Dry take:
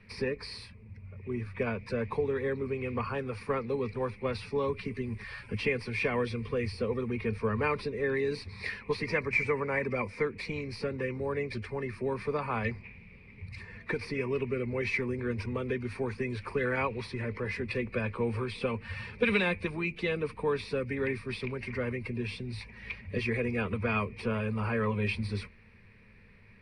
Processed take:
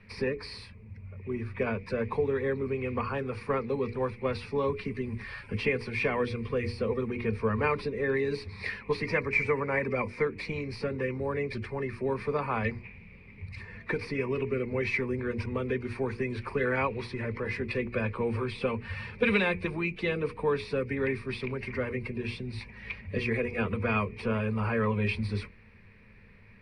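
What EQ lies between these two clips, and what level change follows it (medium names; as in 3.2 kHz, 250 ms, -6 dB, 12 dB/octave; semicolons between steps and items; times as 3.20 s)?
treble shelf 4.3 kHz -6 dB; hum notches 60/120/180/240/300/360/420/480 Hz; +2.5 dB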